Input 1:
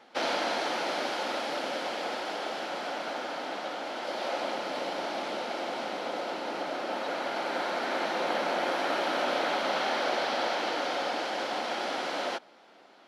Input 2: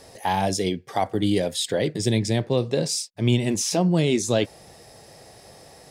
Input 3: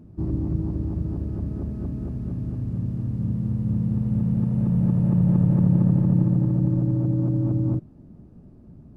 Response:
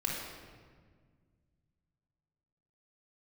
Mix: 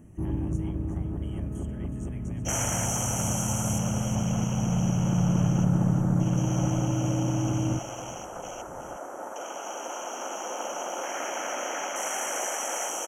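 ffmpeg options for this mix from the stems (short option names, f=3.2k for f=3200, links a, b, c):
-filter_complex "[0:a]equalizer=f=9.6k:w=4.5:g=-6.5,aexciter=amount=11.8:drive=6.9:freq=4.4k,afwtdn=0.0282,adelay=2300,volume=-2dB,asplit=2[a][b];[b]volume=-10dB[c];[1:a]highpass=800,acompressor=threshold=-31dB:ratio=6,volume=-18dB,asplit=2[d][e];[e]volume=-10dB[f];[2:a]lowshelf=f=70:g=7.5,volume=1.5dB,asplit=2[g][h];[h]volume=-19dB[i];[c][f][i]amix=inputs=3:normalize=0,aecho=0:1:368:1[j];[a][d][g][j]amix=inputs=4:normalize=0,asuperstop=centerf=4300:order=20:qfactor=1.7,lowshelf=f=350:g=-9"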